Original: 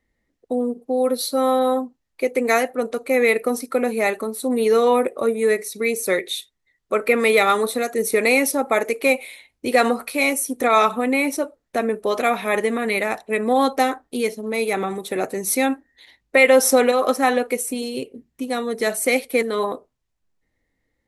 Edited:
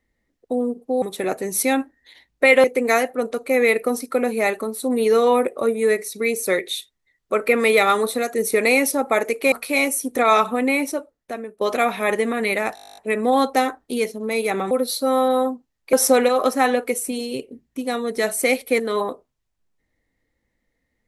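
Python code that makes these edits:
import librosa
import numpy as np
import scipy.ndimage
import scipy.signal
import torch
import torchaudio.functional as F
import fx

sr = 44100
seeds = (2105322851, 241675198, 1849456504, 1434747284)

y = fx.edit(x, sr, fx.swap(start_s=1.02, length_s=1.22, other_s=14.94, other_length_s=1.62),
    fx.cut(start_s=9.12, length_s=0.85),
    fx.fade_out_to(start_s=11.18, length_s=0.88, floor_db=-18.0),
    fx.stutter(start_s=13.2, slice_s=0.02, count=12), tone=tone)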